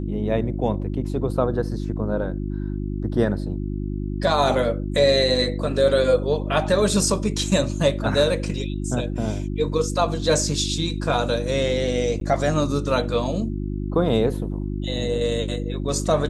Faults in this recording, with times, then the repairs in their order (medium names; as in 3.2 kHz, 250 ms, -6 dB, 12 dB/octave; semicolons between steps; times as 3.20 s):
hum 50 Hz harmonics 7 -27 dBFS
12.20–12.21 s: dropout 12 ms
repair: de-hum 50 Hz, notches 7; interpolate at 12.20 s, 12 ms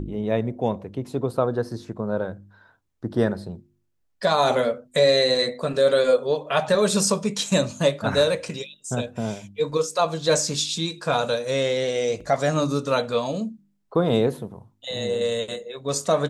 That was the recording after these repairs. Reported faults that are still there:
nothing left